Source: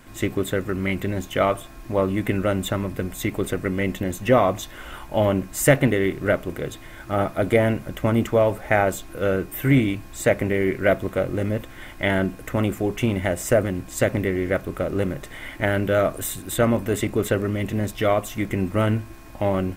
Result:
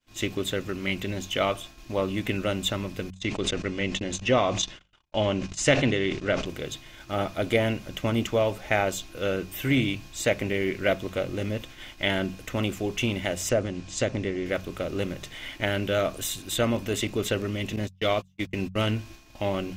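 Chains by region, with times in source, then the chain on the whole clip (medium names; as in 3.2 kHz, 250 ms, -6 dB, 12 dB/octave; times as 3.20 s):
3.10–6.46 s: low-pass 7.5 kHz 24 dB/octave + gate -34 dBFS, range -39 dB + decay stretcher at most 88 dB/s
13.49–14.46 s: low-pass 7.8 kHz 24 dB/octave + dynamic bell 2.7 kHz, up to -5 dB, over -36 dBFS, Q 0.7
17.76–18.91 s: gate -26 dBFS, range -43 dB + dynamic bell 4.5 kHz, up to +4 dB, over -42 dBFS, Q 1
whole clip: expander -36 dBFS; high-order bell 4.1 kHz +10.5 dB; de-hum 46.59 Hz, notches 4; trim -5.5 dB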